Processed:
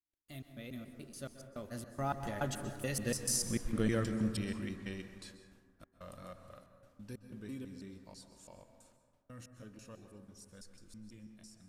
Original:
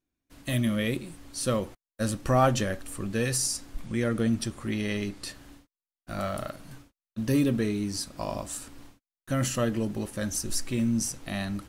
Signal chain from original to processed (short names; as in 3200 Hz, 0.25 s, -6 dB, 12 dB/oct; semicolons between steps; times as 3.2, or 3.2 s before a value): slices in reverse order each 0.153 s, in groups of 2; Doppler pass-by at 3.57, 26 m/s, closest 14 m; plate-style reverb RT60 1.7 s, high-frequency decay 0.3×, pre-delay 0.115 s, DRR 8 dB; gain -4 dB